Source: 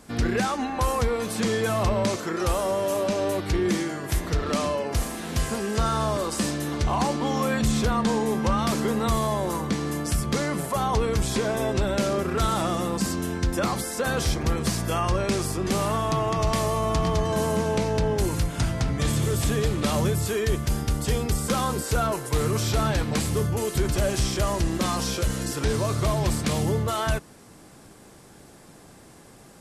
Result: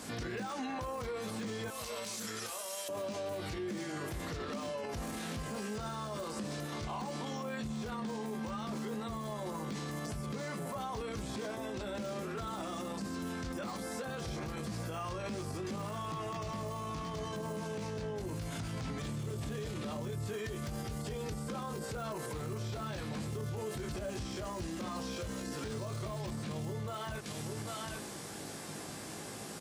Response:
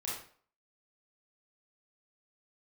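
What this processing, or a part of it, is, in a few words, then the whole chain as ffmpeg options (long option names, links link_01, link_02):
broadcast voice chain: -filter_complex "[0:a]asettb=1/sr,asplit=3[link_01][link_02][link_03];[link_01]atrim=end=1.684[link_04];[link_02]atrim=start=1.68:end=2.89,asetpts=PTS-STARTPTS,afade=type=in:duration=0.004:curve=qsin,afade=type=out:start_time=1.206:duration=0.004:curve=qsin,aderivative[link_05];[link_03]atrim=start=2.886[link_06];[link_04][link_05]acrossfade=duration=0.004:curve1=hsin:curve2=qsin[link_07];[link_07][link_06]acrossfade=duration=0.004:curve1=qsin:curve2=hsin,highpass=93,asplit=2[link_08][link_09];[link_09]adelay=19,volume=-5dB[link_10];[link_08][link_10]amix=inputs=2:normalize=0,aecho=1:1:795:0.112,deesser=0.85,acompressor=threshold=-36dB:ratio=3,equalizer=frequency=4600:width_type=o:width=2.6:gain=4.5,alimiter=level_in=10.5dB:limit=-24dB:level=0:latency=1:release=40,volume=-10.5dB,volume=3dB"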